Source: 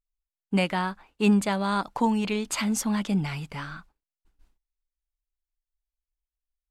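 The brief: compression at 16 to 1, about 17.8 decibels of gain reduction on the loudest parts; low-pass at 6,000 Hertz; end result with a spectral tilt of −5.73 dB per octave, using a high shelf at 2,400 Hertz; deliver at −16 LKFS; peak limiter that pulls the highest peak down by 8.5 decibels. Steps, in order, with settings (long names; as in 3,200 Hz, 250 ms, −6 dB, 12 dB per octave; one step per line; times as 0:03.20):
low-pass filter 6,000 Hz
high-shelf EQ 2,400 Hz −8.5 dB
downward compressor 16 to 1, threshold −34 dBFS
level +25 dB
brickwall limiter −7 dBFS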